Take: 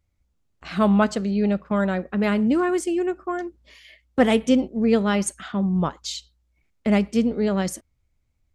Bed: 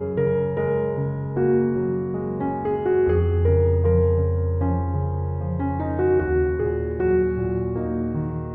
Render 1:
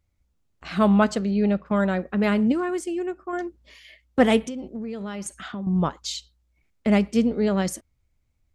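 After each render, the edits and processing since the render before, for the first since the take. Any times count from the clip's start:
0:01.19–0:01.66: high-frequency loss of the air 61 metres
0:02.52–0:03.33: clip gain −4.5 dB
0:04.47–0:05.67: downward compressor 20 to 1, threshold −28 dBFS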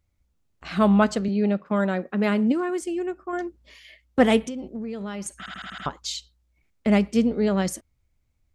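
0:01.28–0:02.82: Chebyshev high-pass filter 210 Hz
0:05.38: stutter in place 0.08 s, 6 plays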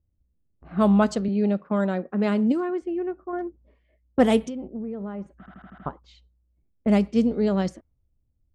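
low-pass that shuts in the quiet parts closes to 410 Hz, open at −16 dBFS
dynamic equaliser 2,100 Hz, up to −6 dB, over −40 dBFS, Q 0.87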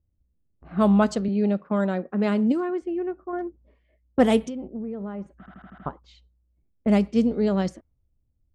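no processing that can be heard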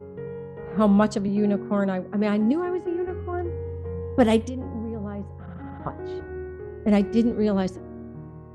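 mix in bed −14 dB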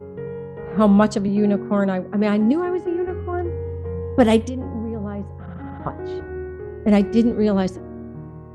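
level +4 dB
brickwall limiter −3 dBFS, peak gain reduction 1 dB

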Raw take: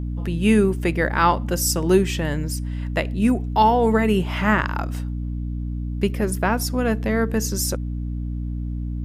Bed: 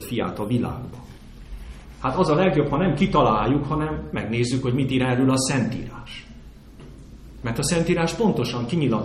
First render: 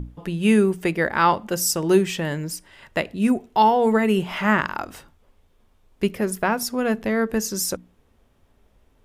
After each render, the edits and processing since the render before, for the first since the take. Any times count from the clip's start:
mains-hum notches 60/120/180/240/300 Hz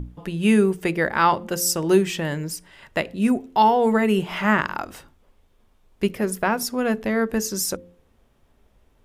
hum removal 87.47 Hz, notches 6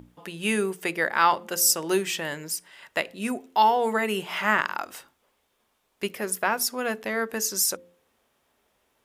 high-pass filter 770 Hz 6 dB per octave
high-shelf EQ 8,100 Hz +4.5 dB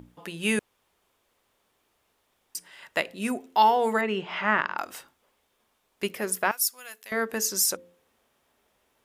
0:00.59–0:02.55: fill with room tone
0:04.01–0:04.78: high-frequency loss of the air 190 metres
0:06.51–0:07.12: first difference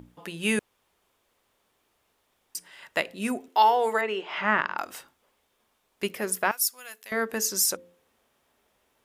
0:03.48–0:04.38: high-pass filter 290 Hz 24 dB per octave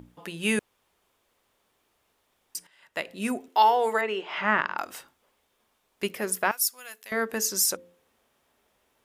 0:02.67–0:03.17: fade in quadratic, from −12.5 dB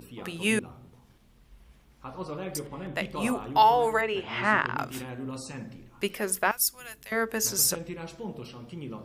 mix in bed −17.5 dB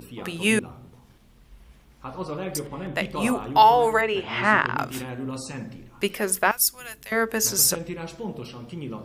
level +4.5 dB

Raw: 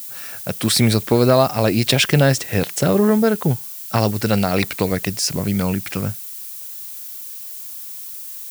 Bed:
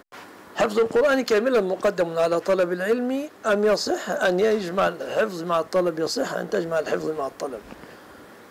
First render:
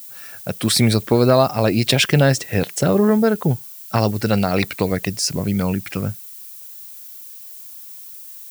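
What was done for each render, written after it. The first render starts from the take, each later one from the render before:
broadband denoise 6 dB, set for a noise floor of −33 dBFS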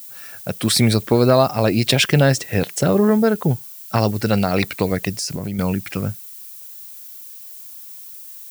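0:05.11–0:05.59: downward compressor, threshold −21 dBFS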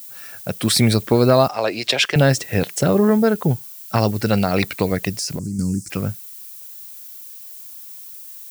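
0:01.48–0:02.16: three-way crossover with the lows and the highs turned down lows −19 dB, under 380 Hz, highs −13 dB, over 7,200 Hz
0:05.39–0:05.90: drawn EQ curve 320 Hz 0 dB, 670 Hz −28 dB, 1,400 Hz −17 dB, 3,200 Hz −28 dB, 5,000 Hz +5 dB, 8,000 Hz +12 dB, 15,000 Hz −16 dB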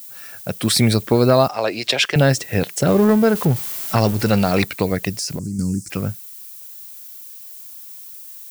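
0:02.87–0:04.64: converter with a step at zero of −24.5 dBFS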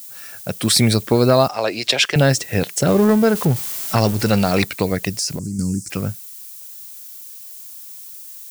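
parametric band 7,100 Hz +3.5 dB 1.7 octaves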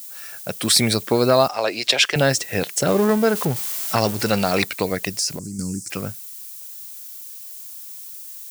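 low-shelf EQ 220 Hz −10 dB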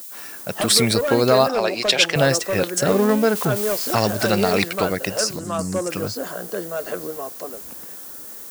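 mix in bed −4 dB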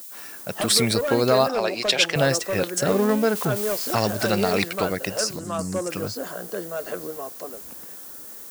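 level −3 dB

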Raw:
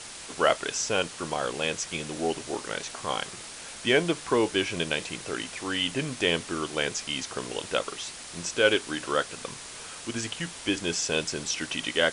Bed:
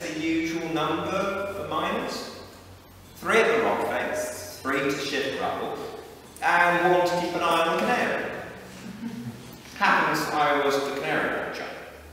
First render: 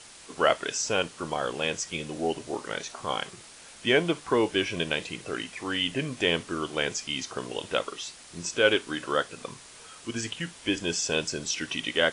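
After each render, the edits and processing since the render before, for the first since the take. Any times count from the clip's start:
noise reduction from a noise print 7 dB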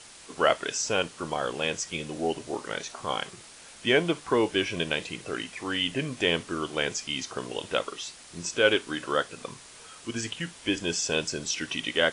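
no processing that can be heard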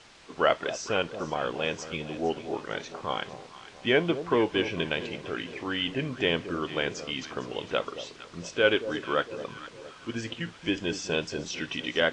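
high-frequency loss of the air 140 metres
on a send: delay that swaps between a low-pass and a high-pass 228 ms, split 880 Hz, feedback 65%, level −11 dB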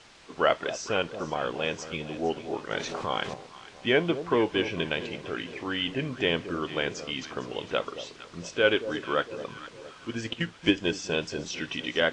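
0:02.71–0:03.34: envelope flattener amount 50%
0:10.24–0:11.09: transient designer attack +7 dB, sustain −2 dB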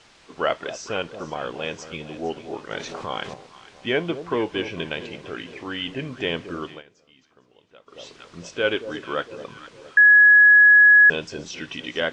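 0:06.63–0:08.06: duck −23 dB, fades 0.20 s
0:09.97–0:11.10: beep over 1,680 Hz −8.5 dBFS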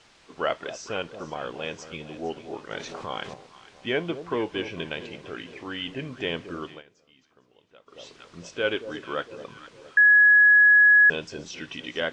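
level −3.5 dB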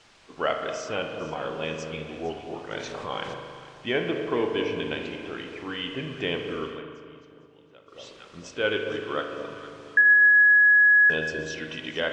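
feedback echo with a low-pass in the loop 273 ms, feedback 63%, low-pass 1,500 Hz, level −16 dB
spring reverb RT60 1.7 s, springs 38 ms, chirp 65 ms, DRR 4.5 dB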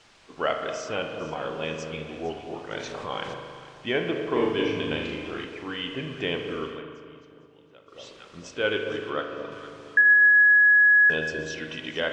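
0:04.32–0:05.45: flutter between parallel walls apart 6.6 metres, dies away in 0.52 s
0:09.10–0:09.52: high-frequency loss of the air 84 metres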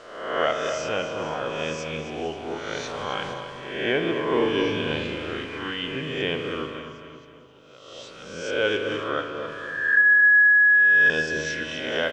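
peak hold with a rise ahead of every peak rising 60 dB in 0.95 s
repeating echo 265 ms, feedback 43%, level −11 dB

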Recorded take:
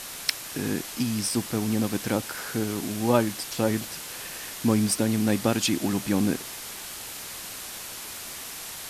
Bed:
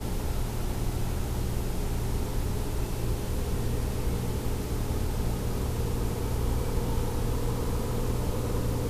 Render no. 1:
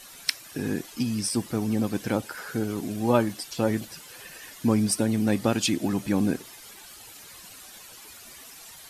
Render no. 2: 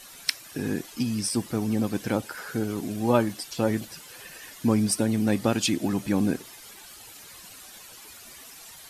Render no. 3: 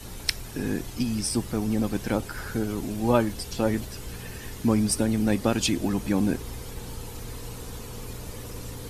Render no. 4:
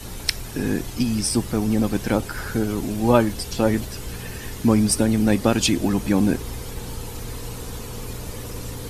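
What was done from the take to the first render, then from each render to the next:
broadband denoise 12 dB, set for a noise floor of −38 dBFS
no processing that can be heard
mix in bed −9.5 dB
level +5 dB; brickwall limiter −1 dBFS, peak gain reduction 2.5 dB

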